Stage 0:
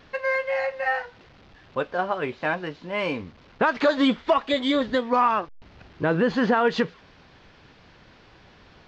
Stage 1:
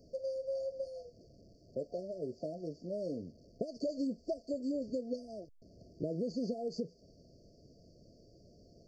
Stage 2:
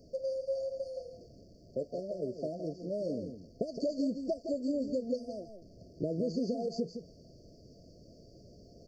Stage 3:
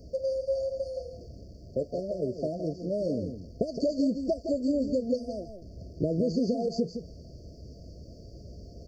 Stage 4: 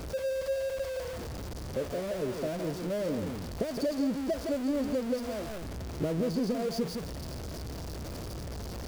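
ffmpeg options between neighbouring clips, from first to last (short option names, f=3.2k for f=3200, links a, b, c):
-filter_complex "[0:a]acrossover=split=110|2500[a][b][c];[a]acompressor=threshold=-59dB:ratio=4[d];[b]acompressor=threshold=-29dB:ratio=4[e];[c]acompressor=threshold=-39dB:ratio=4[f];[d][e][f]amix=inputs=3:normalize=0,afftfilt=real='re*(1-between(b*sr/4096,710,4400))':imag='im*(1-between(b*sr/4096,710,4400))':win_size=4096:overlap=0.75,volume=-5dB"
-af "areverse,acompressor=mode=upward:threshold=-54dB:ratio=2.5,areverse,aecho=1:1:165:0.376,volume=3dB"
-af "equalizer=f=63:w=1.1:g=13.5,volume=5dB"
-af "aeval=exprs='val(0)+0.5*0.0335*sgn(val(0))':c=same,volume=-5dB"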